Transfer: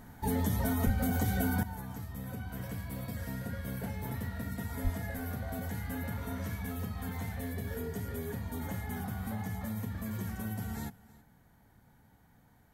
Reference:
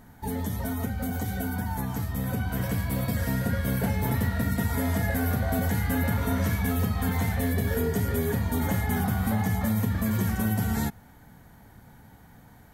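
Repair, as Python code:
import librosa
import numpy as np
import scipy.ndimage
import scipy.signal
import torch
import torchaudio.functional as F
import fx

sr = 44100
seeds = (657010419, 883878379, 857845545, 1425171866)

y = fx.highpass(x, sr, hz=140.0, slope=24, at=(0.85, 0.97), fade=0.02)
y = fx.highpass(y, sr, hz=140.0, slope=24, at=(4.83, 4.95), fade=0.02)
y = fx.fix_echo_inverse(y, sr, delay_ms=323, level_db=-21.0)
y = fx.fix_level(y, sr, at_s=1.63, step_db=11.5)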